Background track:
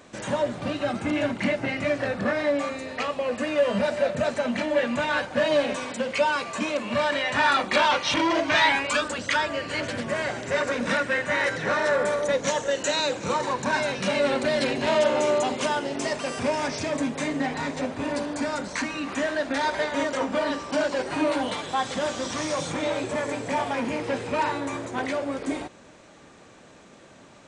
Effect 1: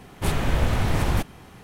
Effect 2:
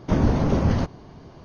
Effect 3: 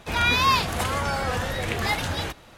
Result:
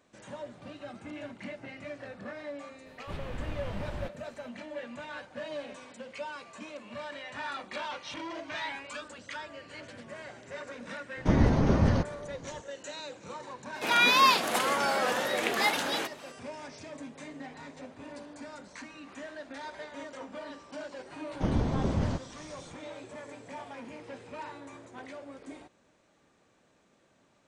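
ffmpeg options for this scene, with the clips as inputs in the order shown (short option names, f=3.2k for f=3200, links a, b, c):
-filter_complex "[2:a]asplit=2[a][b];[0:a]volume=-16.5dB[c];[1:a]acrossover=split=4900[d][e];[e]acompressor=threshold=-56dB:ratio=4:attack=1:release=60[f];[d][f]amix=inputs=2:normalize=0[g];[3:a]highpass=f=230:w=0.5412,highpass=f=230:w=1.3066[h];[g]atrim=end=1.63,asetpts=PTS-STARTPTS,volume=-15.5dB,afade=t=in:d=0.004:c=hsin,afade=t=out:st=1.626:d=0.004:c=hsin,adelay=2860[i];[a]atrim=end=1.44,asetpts=PTS-STARTPTS,volume=-3.5dB,afade=t=in:d=0.004:c=hsin,afade=t=out:st=1.436:d=0.004:c=hsin,adelay=11170[j];[h]atrim=end=2.57,asetpts=PTS-STARTPTS,volume=-1dB,afade=t=in:d=0.004:c=hsin,afade=t=out:st=2.566:d=0.004:c=hsin,adelay=13750[k];[b]atrim=end=1.44,asetpts=PTS-STARTPTS,volume=-8.5dB,afade=t=in:d=0.004:c=hsin,afade=t=out:st=1.436:d=0.004:c=hsin,adelay=940212S[l];[c][i][j][k][l]amix=inputs=5:normalize=0"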